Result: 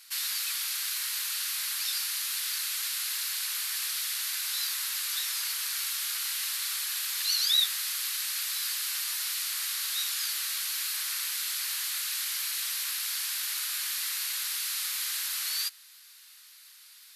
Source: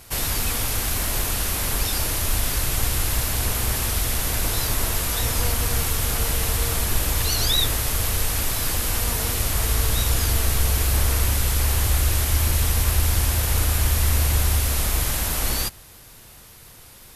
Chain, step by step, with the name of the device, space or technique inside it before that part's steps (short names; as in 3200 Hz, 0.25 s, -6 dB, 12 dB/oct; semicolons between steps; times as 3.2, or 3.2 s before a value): headphones lying on a table (HPF 1400 Hz 24 dB/oct; bell 4300 Hz +7 dB 0.54 oct); gain -6.5 dB